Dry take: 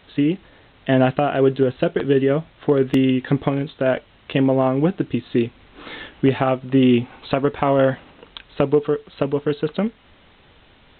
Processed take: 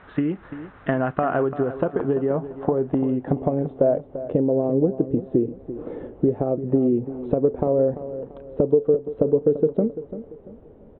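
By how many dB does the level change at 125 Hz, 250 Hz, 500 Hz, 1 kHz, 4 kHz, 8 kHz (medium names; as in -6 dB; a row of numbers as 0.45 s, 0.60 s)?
-4.5 dB, -3.5 dB, -1.0 dB, -5.5 dB, under -20 dB, no reading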